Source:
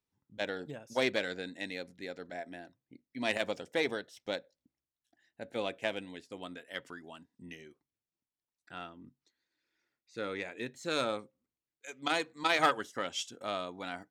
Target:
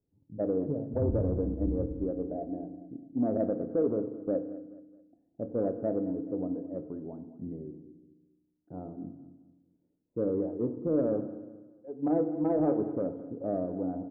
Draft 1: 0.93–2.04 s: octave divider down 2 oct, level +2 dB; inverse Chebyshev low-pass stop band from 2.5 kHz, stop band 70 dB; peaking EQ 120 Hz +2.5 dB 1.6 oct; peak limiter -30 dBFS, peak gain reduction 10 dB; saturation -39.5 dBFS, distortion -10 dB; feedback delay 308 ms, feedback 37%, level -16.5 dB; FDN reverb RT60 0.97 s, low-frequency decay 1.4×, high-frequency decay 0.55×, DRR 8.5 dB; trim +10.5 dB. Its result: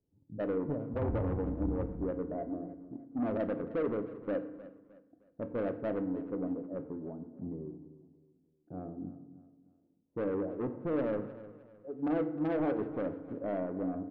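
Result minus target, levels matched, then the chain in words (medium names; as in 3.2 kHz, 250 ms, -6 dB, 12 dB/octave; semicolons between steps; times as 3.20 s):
saturation: distortion +15 dB; echo 94 ms late
0.93–2.04 s: octave divider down 2 oct, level +2 dB; inverse Chebyshev low-pass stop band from 2.5 kHz, stop band 70 dB; peaking EQ 120 Hz +2.5 dB 1.6 oct; peak limiter -30 dBFS, peak gain reduction 10 dB; saturation -28 dBFS, distortion -26 dB; feedback delay 214 ms, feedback 37%, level -16.5 dB; FDN reverb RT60 0.97 s, low-frequency decay 1.4×, high-frequency decay 0.55×, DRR 8.5 dB; trim +10.5 dB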